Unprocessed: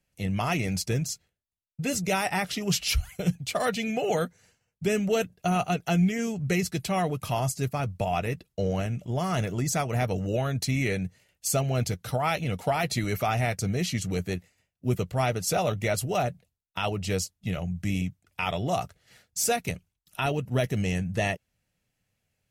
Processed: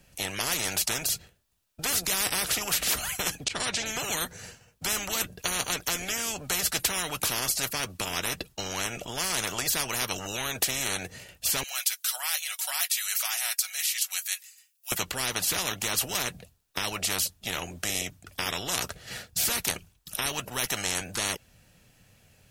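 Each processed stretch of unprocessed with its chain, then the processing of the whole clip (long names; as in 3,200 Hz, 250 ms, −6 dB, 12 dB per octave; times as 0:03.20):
0:03.44–0:03.86: low-pass filter 9,400 Hz 24 dB per octave + high-shelf EQ 5,900 Hz −10 dB + volume swells 124 ms
0:11.63–0:14.92: Bessel high-pass filter 1,300 Hz, order 6 + first difference + comb filter 5.4 ms, depth 55%
whole clip: notch filter 2,100 Hz, Q 13; every bin compressed towards the loudest bin 10 to 1; level +7.5 dB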